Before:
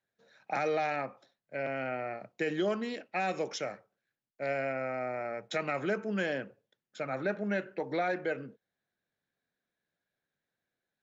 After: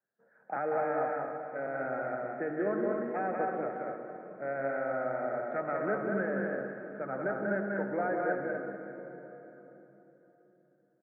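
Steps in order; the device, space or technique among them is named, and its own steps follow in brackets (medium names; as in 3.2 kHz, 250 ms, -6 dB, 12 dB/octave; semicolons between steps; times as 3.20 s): stadium PA (high-pass 140 Hz; peaking EQ 2 kHz +8 dB 0.58 oct; loudspeakers at several distances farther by 65 m -3 dB, 84 m -6 dB; reverberation RT60 3.8 s, pre-delay 77 ms, DRR 6 dB); elliptic low-pass 1.5 kHz, stop band 80 dB; trim -2 dB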